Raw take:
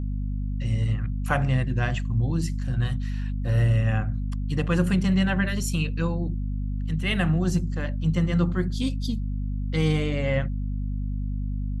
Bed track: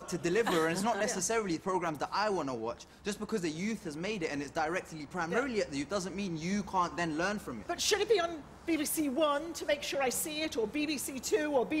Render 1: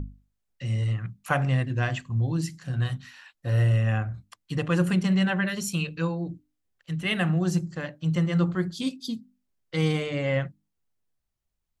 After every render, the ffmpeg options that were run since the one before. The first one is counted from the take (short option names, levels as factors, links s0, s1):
-af "bandreject=f=50:t=h:w=6,bandreject=f=100:t=h:w=6,bandreject=f=150:t=h:w=6,bandreject=f=200:t=h:w=6,bandreject=f=250:t=h:w=6,bandreject=f=300:t=h:w=6"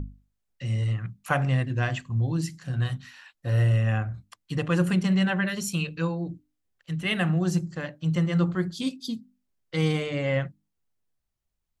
-af anull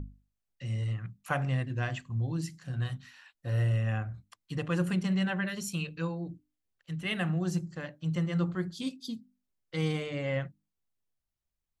-af "volume=0.501"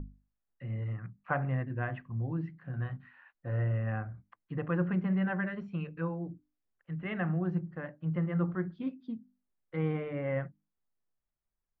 -af "lowpass=f=1900:w=0.5412,lowpass=f=1900:w=1.3066,equalizer=f=84:t=o:w=1:g=-6"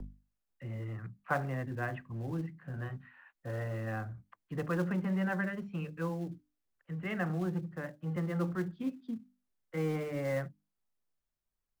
-filter_complex "[0:a]acrossover=split=190|330|650[s0][s1][s2][s3];[s0]asoftclip=type=hard:threshold=0.01[s4];[s2]acrusher=bits=3:mode=log:mix=0:aa=0.000001[s5];[s4][s1][s5][s3]amix=inputs=4:normalize=0"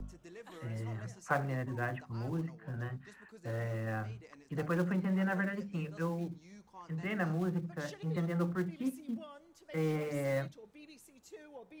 -filter_complex "[1:a]volume=0.0841[s0];[0:a][s0]amix=inputs=2:normalize=0"